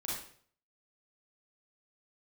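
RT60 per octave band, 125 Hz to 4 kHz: 0.65 s, 0.55 s, 0.55 s, 0.50 s, 0.50 s, 0.45 s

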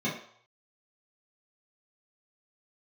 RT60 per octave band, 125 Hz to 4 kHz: 0.65 s, 0.40 s, 0.55 s, 0.65 s, 0.55 s, 0.60 s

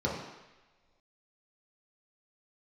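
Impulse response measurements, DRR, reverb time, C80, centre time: -5.0 dB, no single decay rate, 5.5 dB, 53 ms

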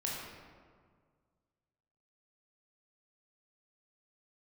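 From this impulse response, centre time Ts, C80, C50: 93 ms, 2.0 dB, -0.5 dB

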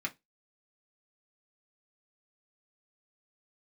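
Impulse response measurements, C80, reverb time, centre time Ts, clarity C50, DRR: 32.5 dB, 0.15 s, 6 ms, 22.0 dB, -1.5 dB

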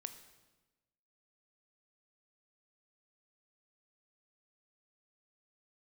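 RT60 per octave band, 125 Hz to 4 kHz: 1.3 s, 1.3 s, 1.2 s, 1.1 s, 1.0 s, 1.0 s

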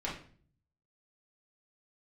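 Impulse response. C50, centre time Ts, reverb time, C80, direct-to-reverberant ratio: 5.5 dB, 31 ms, 0.45 s, 11.0 dB, -6.5 dB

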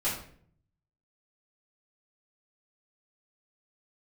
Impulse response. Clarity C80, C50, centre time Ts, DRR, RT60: 9.0 dB, 5.0 dB, 37 ms, -10.0 dB, 0.55 s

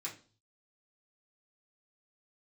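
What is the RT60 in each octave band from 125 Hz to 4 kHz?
0.80 s, 0.45 s, 0.40 s, 0.35 s, 0.30 s, 0.40 s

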